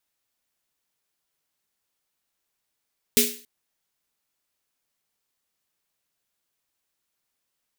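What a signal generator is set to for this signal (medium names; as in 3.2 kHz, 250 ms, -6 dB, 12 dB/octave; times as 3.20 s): snare drum length 0.28 s, tones 240 Hz, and 420 Hz, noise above 2.1 kHz, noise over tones 5 dB, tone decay 0.36 s, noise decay 0.41 s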